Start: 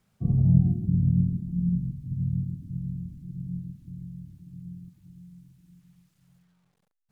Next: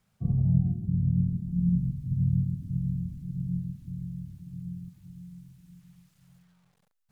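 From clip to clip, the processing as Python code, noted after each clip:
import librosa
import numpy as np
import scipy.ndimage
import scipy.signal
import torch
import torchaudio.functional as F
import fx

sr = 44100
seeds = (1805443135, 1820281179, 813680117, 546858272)

y = fx.peak_eq(x, sr, hz=320.0, db=-6.5, octaves=0.81)
y = fx.rider(y, sr, range_db=4, speed_s=0.5)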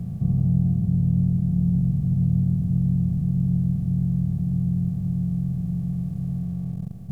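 y = fx.bin_compress(x, sr, power=0.2)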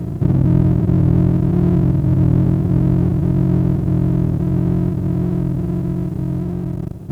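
y = fx.lower_of_two(x, sr, delay_ms=1.5)
y = scipy.signal.sosfilt(scipy.signal.butter(2, 54.0, 'highpass', fs=sr, output='sos'), y)
y = F.gain(torch.from_numpy(y), 8.5).numpy()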